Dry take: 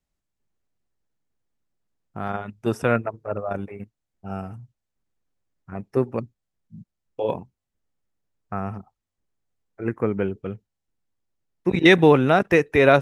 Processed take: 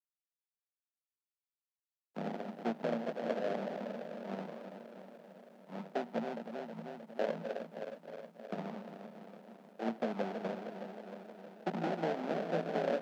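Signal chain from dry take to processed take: backward echo that repeats 157 ms, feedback 82%, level -12 dB; compression 10:1, threshold -24 dBFS, peak gain reduction 15 dB; sample-rate reducer 1.1 kHz, jitter 20%; distance through air 190 m; word length cut 10-bit, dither none; rippled Chebyshev high-pass 160 Hz, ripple 9 dB; trim -1.5 dB

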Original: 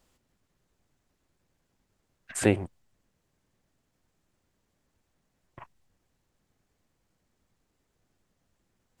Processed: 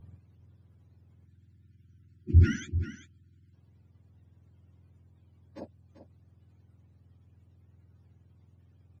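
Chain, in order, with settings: spectrum inverted on a logarithmic axis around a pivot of 770 Hz; in parallel at -4 dB: overload inside the chain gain 32.5 dB; on the sum: spectral selection erased 1.25–3.54 s, 380–1300 Hz; peak limiter -24.5 dBFS, peak gain reduction 9.5 dB; RIAA curve playback; on a send: delay 390 ms -12 dB

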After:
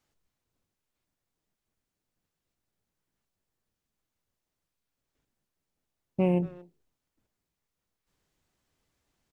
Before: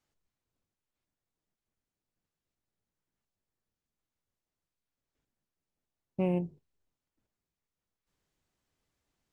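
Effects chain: speakerphone echo 230 ms, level -18 dB; trim +4.5 dB

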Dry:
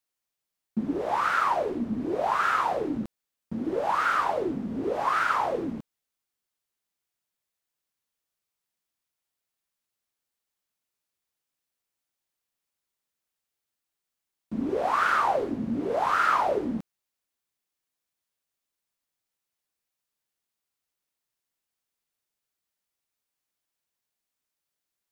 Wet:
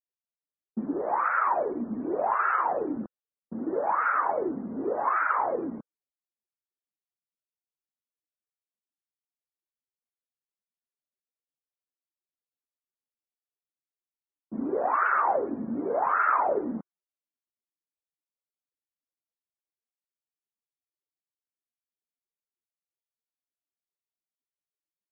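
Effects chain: loudest bins only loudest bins 64; level-controlled noise filter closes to 490 Hz, open at -22 dBFS; three-band isolator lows -13 dB, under 200 Hz, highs -22 dB, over 2.5 kHz

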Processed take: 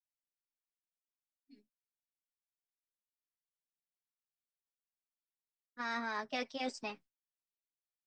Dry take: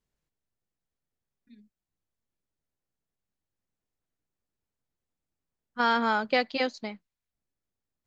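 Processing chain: band-stop 400 Hz, Q 12; comb 7.4 ms, depth 59%; expander -51 dBFS; formant shift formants +3 st; reverse; compression 5:1, threshold -33 dBFS, peak gain reduction 13.5 dB; reverse; trim -3 dB

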